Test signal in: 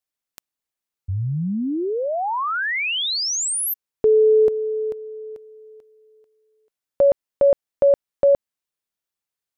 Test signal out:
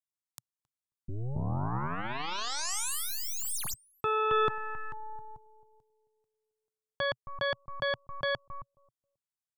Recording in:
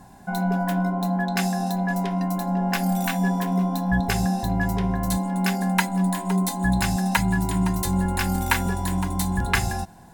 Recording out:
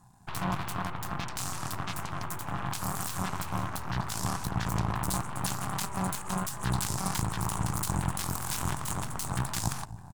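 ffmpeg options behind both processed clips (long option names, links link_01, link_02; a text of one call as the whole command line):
ffmpeg -i in.wav -filter_complex "[0:a]alimiter=limit=-16dB:level=0:latency=1:release=23,asplit=2[link_01][link_02];[link_02]adelay=269,lowpass=frequency=930:poles=1,volume=-11dB,asplit=2[link_03][link_04];[link_04]adelay=269,lowpass=frequency=930:poles=1,volume=0.21,asplit=2[link_05][link_06];[link_06]adelay=269,lowpass=frequency=930:poles=1,volume=0.21[link_07];[link_01][link_03][link_05][link_07]amix=inputs=4:normalize=0,aeval=exprs='0.2*(cos(1*acos(clip(val(0)/0.2,-1,1)))-cos(1*PI/2))+0.0794*(cos(3*acos(clip(val(0)/0.2,-1,1)))-cos(3*PI/2))+0.02*(cos(6*acos(clip(val(0)/0.2,-1,1)))-cos(6*PI/2))+0.0282*(cos(8*acos(clip(val(0)/0.2,-1,1)))-cos(8*PI/2))':channel_layout=same,equalizer=frequency=125:width_type=o:width=1:gain=11,equalizer=frequency=250:width_type=o:width=1:gain=-3,equalizer=frequency=500:width_type=o:width=1:gain=-11,equalizer=frequency=1000:width_type=o:width=1:gain=6,equalizer=frequency=2000:width_type=o:width=1:gain=-6,equalizer=frequency=8000:width_type=o:width=1:gain=6" out.wav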